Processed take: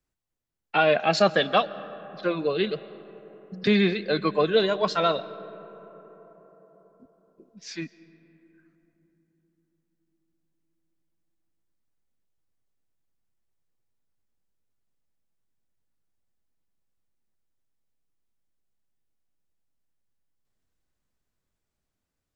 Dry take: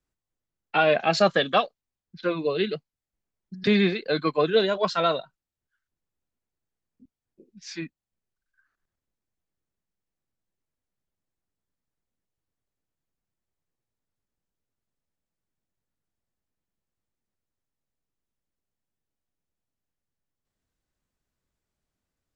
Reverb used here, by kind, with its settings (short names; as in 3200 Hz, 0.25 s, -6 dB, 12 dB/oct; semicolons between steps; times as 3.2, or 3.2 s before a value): digital reverb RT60 4.9 s, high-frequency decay 0.3×, pre-delay 95 ms, DRR 17 dB